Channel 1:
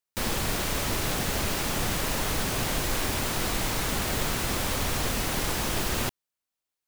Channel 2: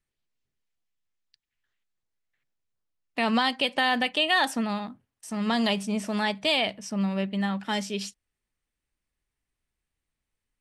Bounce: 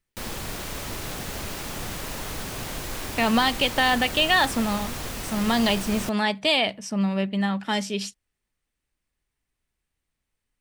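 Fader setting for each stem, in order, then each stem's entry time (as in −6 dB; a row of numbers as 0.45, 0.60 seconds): −5.0, +3.0 decibels; 0.00, 0.00 seconds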